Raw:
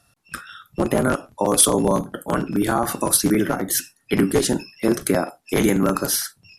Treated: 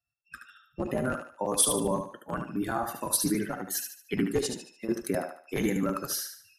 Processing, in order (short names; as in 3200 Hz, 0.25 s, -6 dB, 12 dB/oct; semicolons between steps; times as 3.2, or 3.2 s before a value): per-bin expansion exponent 1.5; 4.47–4.89 compressor, threshold -27 dBFS, peak gain reduction 10 dB; thinning echo 74 ms, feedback 38%, high-pass 350 Hz, level -6 dB; gain -7.5 dB